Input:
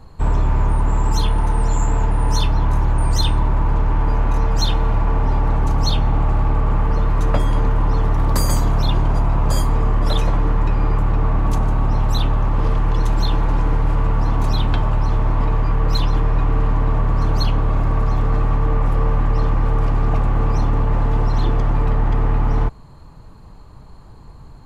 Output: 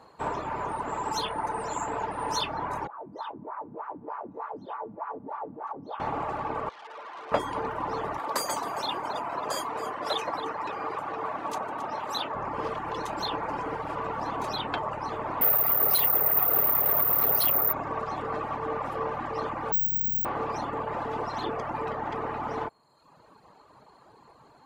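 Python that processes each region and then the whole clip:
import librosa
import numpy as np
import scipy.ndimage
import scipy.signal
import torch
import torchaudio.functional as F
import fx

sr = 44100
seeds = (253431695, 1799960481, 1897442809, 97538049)

y = fx.chain(x, sr, fx.high_shelf(hz=2000.0, db=-6.5),
    fx.wah_lfo(hz=3.3, low_hz=200.0, high_hz=1300.0, q=2.6), at=(2.87, 6.0))
y = fx.chain(y, sr, fx.bandpass_edges(low_hz=540.0, high_hz=2100.0),
    fx.tube_stage(drive_db=35.0, bias=0.7), at=(6.69, 7.32))
y = fx.chain(y, sr, fx.highpass(hz=390.0, slope=6),
    fx.echo_feedback(ms=270, feedback_pct=30, wet_db=-11.5), at=(8.18, 12.35))
y = fx.chain(y, sr, fx.lower_of_two(delay_ms=1.5),
    fx.resample_bad(factor=3, down='filtered', up='zero_stuff'), at=(15.41, 17.73))
y = fx.chain(y, sr, fx.cheby1_bandstop(low_hz=230.0, high_hz=5600.0, order=4),
    fx.resample_bad(factor=2, down='none', up='zero_stuff'), at=(19.72, 20.25))
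y = scipy.signal.sosfilt(scipy.signal.butter(2, 530.0, 'highpass', fs=sr, output='sos'), y)
y = fx.dereverb_blind(y, sr, rt60_s=0.92)
y = fx.tilt_eq(y, sr, slope=-2.0)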